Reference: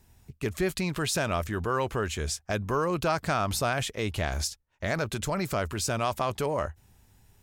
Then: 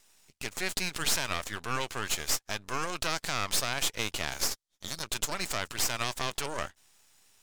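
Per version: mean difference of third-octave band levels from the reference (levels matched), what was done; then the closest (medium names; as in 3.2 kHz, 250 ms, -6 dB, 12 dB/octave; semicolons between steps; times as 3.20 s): 8.5 dB: time-frequency box 4.50–5.03 s, 210–3100 Hz -19 dB; frequency weighting ITU-R 468; peak limiter -13 dBFS, peak gain reduction 7 dB; half-wave rectifier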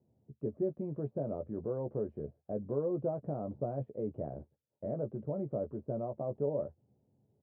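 15.0 dB: bass shelf 480 Hz -7.5 dB; doubling 14 ms -6.5 dB; de-esser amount 85%; Chebyshev band-pass 110–570 Hz, order 3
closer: first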